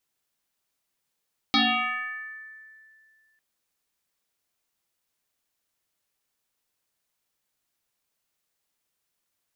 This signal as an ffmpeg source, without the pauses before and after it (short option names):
-f lavfi -i "aevalsrc='0.15*pow(10,-3*t/2.24)*sin(2*PI*1760*t+5.6*pow(10,-3*t/1.84)*sin(2*PI*0.29*1760*t))':d=1.85:s=44100"